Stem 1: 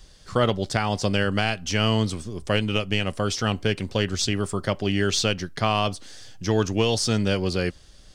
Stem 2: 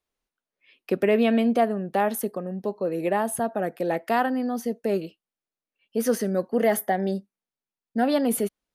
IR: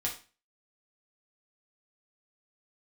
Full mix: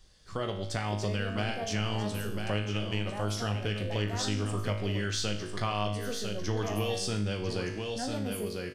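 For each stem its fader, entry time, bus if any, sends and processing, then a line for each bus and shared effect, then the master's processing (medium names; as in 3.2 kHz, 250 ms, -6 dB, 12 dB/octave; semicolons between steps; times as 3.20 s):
-3.0 dB, 0.00 s, send -15 dB, echo send -8 dB, none
-10.0 dB, 0.00 s, no send, no echo send, none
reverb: on, RT60 0.35 s, pre-delay 4 ms
echo: delay 999 ms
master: level rider gain up to 11 dB; feedback comb 52 Hz, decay 0.62 s, harmonics all, mix 80%; compression 2:1, threshold -34 dBFS, peak gain reduction 10 dB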